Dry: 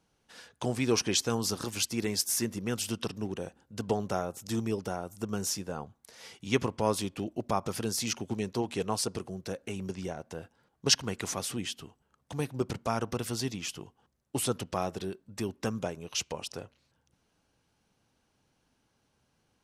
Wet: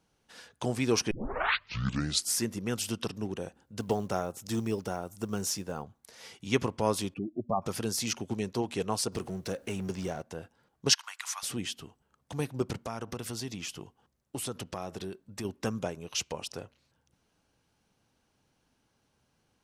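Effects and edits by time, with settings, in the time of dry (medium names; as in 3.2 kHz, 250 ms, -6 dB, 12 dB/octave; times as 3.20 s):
1.11 s: tape start 1.32 s
3.78–5.82 s: short-mantissa float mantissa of 4-bit
7.14–7.62 s: spectral contrast enhancement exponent 2.3
9.12–10.22 s: companding laws mixed up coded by mu
10.93–11.43 s: steep high-pass 940 Hz
12.80–15.45 s: compression 2.5:1, threshold -34 dBFS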